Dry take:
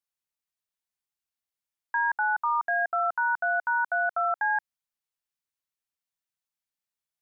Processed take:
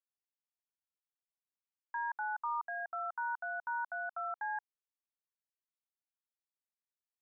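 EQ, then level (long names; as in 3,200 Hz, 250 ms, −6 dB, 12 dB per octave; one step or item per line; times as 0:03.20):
low-pass filter 1,400 Hz 12 dB per octave
first difference
parametric band 910 Hz +9 dB 1.3 octaves
0.0 dB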